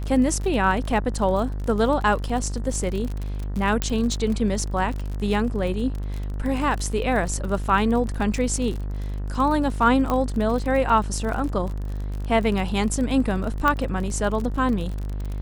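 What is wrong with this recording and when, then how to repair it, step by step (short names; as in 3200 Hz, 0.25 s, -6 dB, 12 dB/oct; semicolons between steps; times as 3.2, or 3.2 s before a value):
buzz 50 Hz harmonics 39 -28 dBFS
crackle 44/s -28 dBFS
3.82 pop -6 dBFS
10.1 pop -12 dBFS
13.68 pop -9 dBFS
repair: de-click; de-hum 50 Hz, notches 39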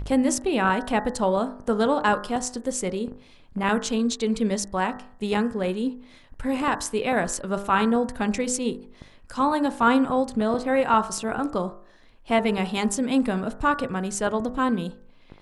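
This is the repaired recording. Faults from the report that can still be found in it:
none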